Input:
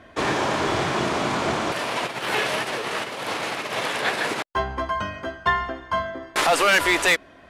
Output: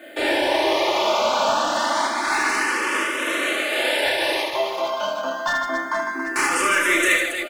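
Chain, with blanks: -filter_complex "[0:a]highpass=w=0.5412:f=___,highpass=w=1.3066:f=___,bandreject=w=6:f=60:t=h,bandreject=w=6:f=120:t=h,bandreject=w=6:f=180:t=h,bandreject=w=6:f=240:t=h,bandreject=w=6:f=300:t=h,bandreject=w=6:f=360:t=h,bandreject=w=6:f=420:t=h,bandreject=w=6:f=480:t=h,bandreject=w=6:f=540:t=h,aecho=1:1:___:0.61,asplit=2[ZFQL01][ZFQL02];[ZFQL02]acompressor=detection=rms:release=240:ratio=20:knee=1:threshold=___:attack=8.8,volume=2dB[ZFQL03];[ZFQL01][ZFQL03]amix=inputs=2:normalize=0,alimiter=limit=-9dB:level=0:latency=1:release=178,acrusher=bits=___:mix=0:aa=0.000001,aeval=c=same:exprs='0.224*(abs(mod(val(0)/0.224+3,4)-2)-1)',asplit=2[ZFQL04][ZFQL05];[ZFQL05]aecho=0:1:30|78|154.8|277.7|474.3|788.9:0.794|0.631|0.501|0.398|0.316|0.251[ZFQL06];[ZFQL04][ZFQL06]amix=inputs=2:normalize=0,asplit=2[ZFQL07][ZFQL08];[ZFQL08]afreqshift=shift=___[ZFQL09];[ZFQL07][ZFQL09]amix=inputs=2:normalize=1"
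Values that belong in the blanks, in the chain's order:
280, 280, 3.4, -31dB, 8, 0.27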